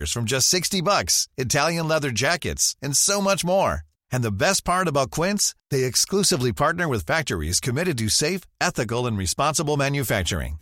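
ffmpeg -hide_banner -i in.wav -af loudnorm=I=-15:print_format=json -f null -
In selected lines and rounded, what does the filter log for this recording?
"input_i" : "-21.8",
"input_tp" : "-5.8",
"input_lra" : "2.2",
"input_thresh" : "-31.9",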